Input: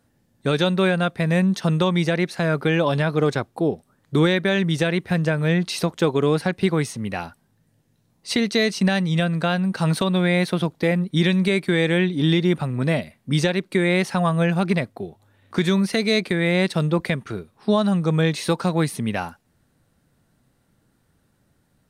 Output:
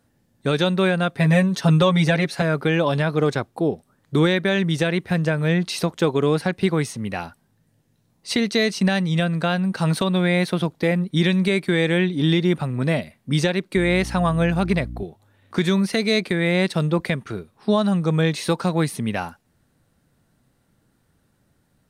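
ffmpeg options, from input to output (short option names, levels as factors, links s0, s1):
-filter_complex "[0:a]asettb=1/sr,asplit=3[s0][s1][s2];[s0]atrim=end=1.154[s3];[s1]atrim=start=1.15:end=2.42,asetpts=PTS-STARTPTS,afade=t=in:d=0.004:c=qsin,afade=t=out:st=1.266:d=0.004:c=qsin,aecho=1:1:7.2:0.99,atrim=end_sample=56007[s4];[s2]atrim=start=2.416[s5];[s3][s4]acrossfade=d=0.004:c1=hsin:c2=qsin[s6];[s6][s5]acrossfade=d=0.004:c1=qsin:c2=hsin,asettb=1/sr,asplit=3[s7][s8][s9];[s7]atrim=end=13.764[s10];[s8]atrim=start=13.76:end=15.03,asetpts=PTS-STARTPTS,afade=t=in:d=0.004:c=qsin,afade=t=out:st=1.266:d=0.004:c=qsin,aeval=exprs='val(0)+0.0282*(sin(2*PI*60*n/s)+sin(2*PI*2*60*n/s)/2+sin(2*PI*3*60*n/s)/3+sin(2*PI*4*60*n/s)/4+sin(2*PI*5*60*n/s)/5)':c=same[s11];[s9]atrim=start=15.026[s12];[s10][s11]acrossfade=d=0.004:c1=hsin:c2=qsin[s13];[s13][s12]acrossfade=d=0.004:c1=qsin:c2=hsin"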